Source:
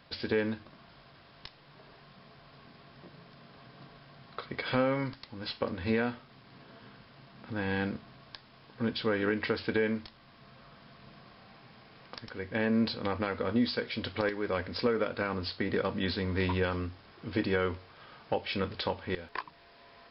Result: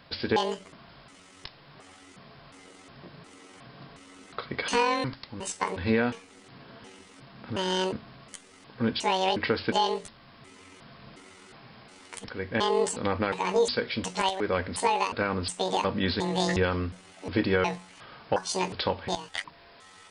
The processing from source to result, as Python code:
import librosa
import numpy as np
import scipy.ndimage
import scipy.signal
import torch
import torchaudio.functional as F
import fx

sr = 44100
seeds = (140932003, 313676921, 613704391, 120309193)

y = fx.pitch_trill(x, sr, semitones=11.0, every_ms=360)
y = y * 10.0 ** (4.5 / 20.0)